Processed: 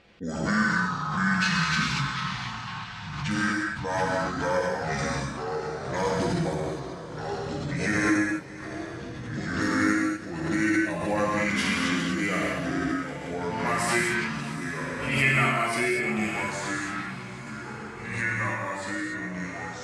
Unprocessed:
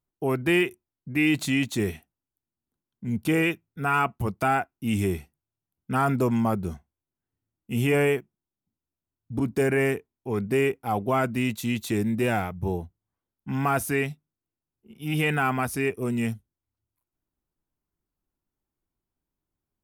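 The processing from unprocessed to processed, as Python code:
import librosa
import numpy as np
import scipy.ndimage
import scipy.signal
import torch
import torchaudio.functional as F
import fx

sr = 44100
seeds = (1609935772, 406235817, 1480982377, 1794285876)

y = fx.pitch_glide(x, sr, semitones=-9.0, runs='ending unshifted')
y = fx.weighting(y, sr, curve='D')
y = fx.env_lowpass(y, sr, base_hz=1900.0, full_db=-23.0)
y = fx.high_shelf(y, sr, hz=9400.0, db=-5.5)
y = y + 0.41 * np.pad(y, (int(5.9 * sr / 1000.0), 0))[:len(y)]
y = fx.echo_diffused(y, sr, ms=700, feedback_pct=53, wet_db=-15)
y = fx.rev_gated(y, sr, seeds[0], gate_ms=270, shape='flat', drr_db=-3.0)
y = fx.echo_pitch(y, sr, ms=118, semitones=-3, count=3, db_per_echo=-6.0)
y = fx.pre_swell(y, sr, db_per_s=48.0)
y = F.gain(torch.from_numpy(y), -6.0).numpy()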